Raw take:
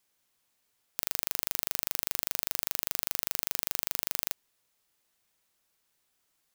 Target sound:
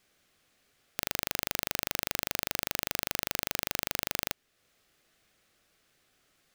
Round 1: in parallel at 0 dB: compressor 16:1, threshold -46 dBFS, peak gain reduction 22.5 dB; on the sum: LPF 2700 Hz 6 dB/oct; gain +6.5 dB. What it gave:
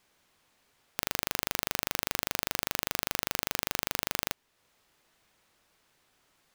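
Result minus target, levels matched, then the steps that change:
1000 Hz band +3.5 dB
add after LPF: bell 940 Hz -13 dB 0.28 oct

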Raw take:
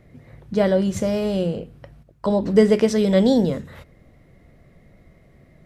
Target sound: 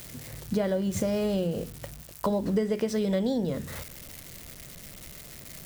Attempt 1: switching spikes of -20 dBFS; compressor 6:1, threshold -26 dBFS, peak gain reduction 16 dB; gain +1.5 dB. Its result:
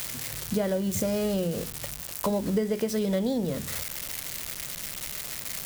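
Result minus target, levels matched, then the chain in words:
switching spikes: distortion +11 dB
switching spikes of -31 dBFS; compressor 6:1, threshold -26 dBFS, peak gain reduction 16 dB; gain +1.5 dB

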